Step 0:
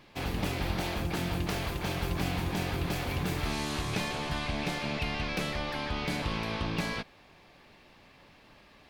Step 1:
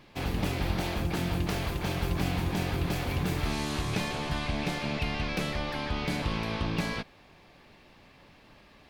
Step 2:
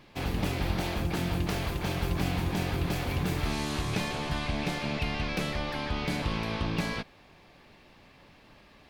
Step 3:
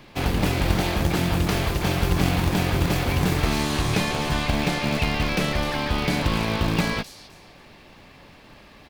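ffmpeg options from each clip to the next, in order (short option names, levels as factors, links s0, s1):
-af "lowshelf=f=380:g=3"
-af anull
-filter_complex "[0:a]acrossover=split=340|4000[s0][s1][s2];[s0]acrusher=bits=2:mode=log:mix=0:aa=0.000001[s3];[s2]aecho=1:1:259|518|777:0.501|0.135|0.0365[s4];[s3][s1][s4]amix=inputs=3:normalize=0,volume=2.37"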